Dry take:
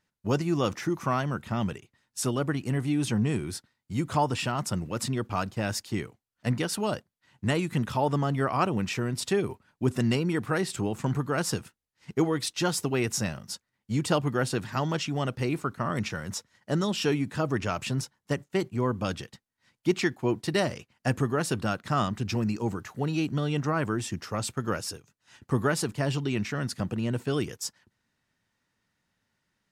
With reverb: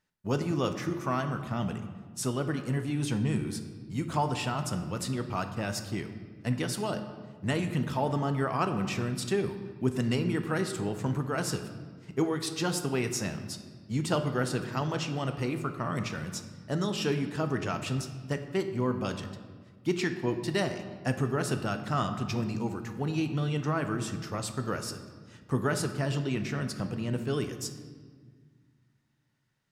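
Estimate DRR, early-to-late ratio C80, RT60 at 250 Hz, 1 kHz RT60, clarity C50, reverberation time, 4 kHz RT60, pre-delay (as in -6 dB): 7.0 dB, 11.0 dB, 2.5 s, 1.5 s, 9.5 dB, 1.7 s, 1.1 s, 5 ms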